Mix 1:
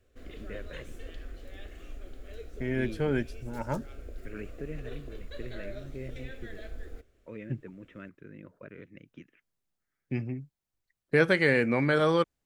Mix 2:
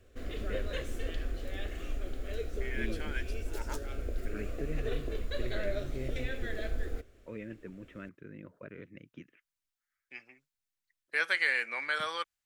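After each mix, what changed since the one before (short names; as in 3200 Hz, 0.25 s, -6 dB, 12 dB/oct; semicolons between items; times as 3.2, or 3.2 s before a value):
second voice: add HPF 1400 Hz 12 dB/oct; background +7.0 dB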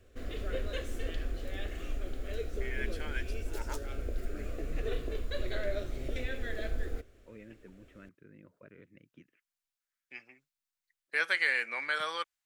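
first voice -8.0 dB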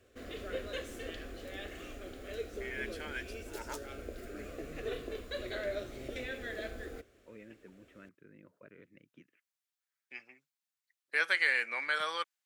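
master: add HPF 190 Hz 6 dB/oct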